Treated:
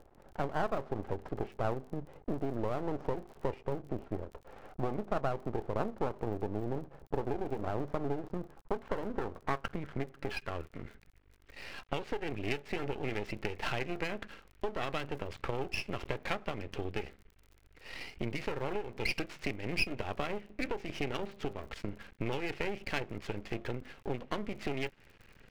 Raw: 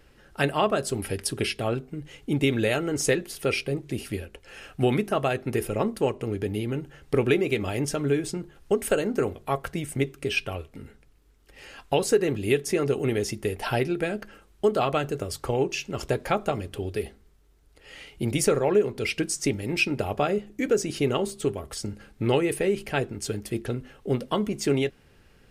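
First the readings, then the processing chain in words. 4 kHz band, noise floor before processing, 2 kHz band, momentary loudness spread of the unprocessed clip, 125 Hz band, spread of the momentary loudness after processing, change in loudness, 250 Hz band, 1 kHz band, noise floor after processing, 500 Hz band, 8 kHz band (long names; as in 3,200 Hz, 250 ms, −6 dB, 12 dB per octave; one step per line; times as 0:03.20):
−10.5 dB, −58 dBFS, −8.0 dB, 11 LU, −10.5 dB, 8 LU, −11.0 dB, −11.5 dB, −7.5 dB, −62 dBFS, −12.0 dB, −22.5 dB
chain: running median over 5 samples
downward compressor 6 to 1, threshold −30 dBFS, peak gain reduction 14 dB
low-pass filter sweep 790 Hz → 2,400 Hz, 0:07.88–0:11.50
half-wave rectification
surface crackle 29 per second −47 dBFS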